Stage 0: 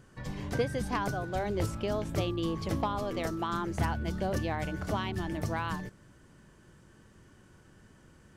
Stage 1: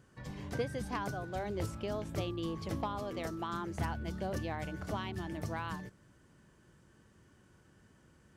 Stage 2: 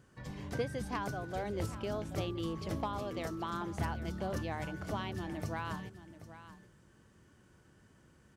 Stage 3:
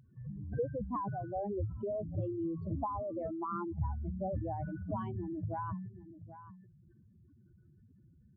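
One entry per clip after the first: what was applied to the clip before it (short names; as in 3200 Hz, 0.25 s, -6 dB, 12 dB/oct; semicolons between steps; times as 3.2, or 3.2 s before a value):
HPF 41 Hz; gain -5.5 dB
echo 0.781 s -14 dB
spectral contrast raised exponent 3.5; gain +1.5 dB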